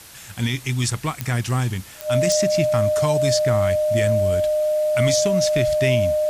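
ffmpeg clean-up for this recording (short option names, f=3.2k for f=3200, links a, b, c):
-af "adeclick=t=4,bandreject=f=610:w=30,afwtdn=0.0079"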